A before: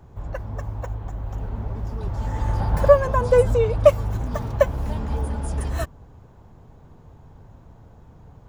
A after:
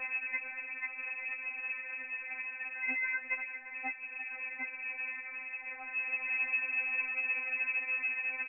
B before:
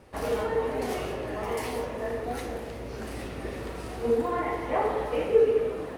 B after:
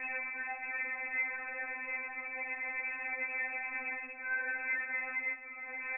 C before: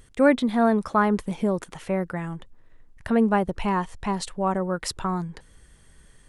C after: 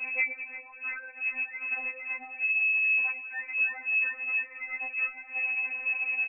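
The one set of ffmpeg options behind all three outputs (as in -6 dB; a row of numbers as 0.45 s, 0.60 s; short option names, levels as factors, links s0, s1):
-af "aeval=exprs='val(0)+0.5*0.106*sgn(val(0))':c=same,adynamicequalizer=threshold=0.00631:dfrequency=290:dqfactor=5.7:tfrequency=290:tqfactor=5.7:attack=5:release=100:ratio=0.375:range=2.5:mode=cutabove:tftype=bell,aeval=exprs='(mod(1.88*val(0)+1,2)-1)/1.88':c=same,acompressor=threshold=0.0708:ratio=6,equalizer=f=1300:t=o:w=0.48:g=-9.5,aecho=1:1:344:0.168,lowpass=f=2200:t=q:w=0.5098,lowpass=f=2200:t=q:w=0.6013,lowpass=f=2200:t=q:w=0.9,lowpass=f=2200:t=q:w=2.563,afreqshift=-2600,afftfilt=real='re*3.46*eq(mod(b,12),0)':imag='im*3.46*eq(mod(b,12),0)':win_size=2048:overlap=0.75,volume=0.422"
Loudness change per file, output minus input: -11.5 LU, -7.0 LU, -3.5 LU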